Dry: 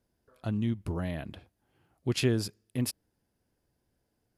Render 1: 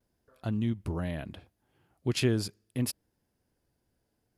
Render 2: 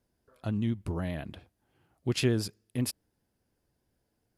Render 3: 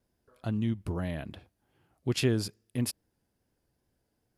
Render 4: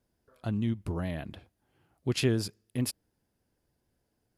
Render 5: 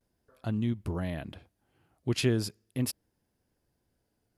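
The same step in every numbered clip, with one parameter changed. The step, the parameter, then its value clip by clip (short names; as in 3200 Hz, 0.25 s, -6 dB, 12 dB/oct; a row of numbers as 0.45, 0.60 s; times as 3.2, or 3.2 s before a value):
vibrato, rate: 0.71, 10, 2.4, 6.8, 0.41 Hz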